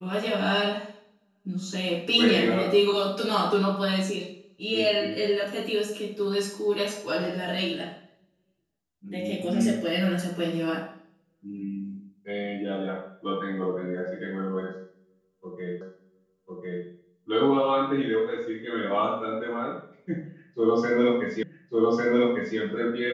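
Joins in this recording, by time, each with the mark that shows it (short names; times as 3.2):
15.81 repeat of the last 1.05 s
21.43 repeat of the last 1.15 s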